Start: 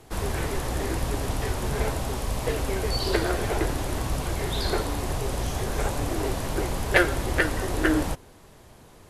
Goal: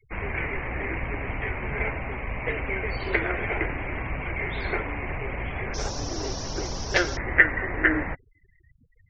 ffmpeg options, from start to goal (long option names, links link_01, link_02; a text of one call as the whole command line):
ffmpeg -i in.wav -af "asetnsamples=nb_out_samples=441:pad=0,asendcmd='5.74 lowpass f 5600;7.17 lowpass f 2000',lowpass=frequency=2200:width_type=q:width=6.9,afftfilt=real='re*gte(hypot(re,im),0.0178)':imag='im*gte(hypot(re,im),0.0178)':win_size=1024:overlap=0.75,volume=-4dB" out.wav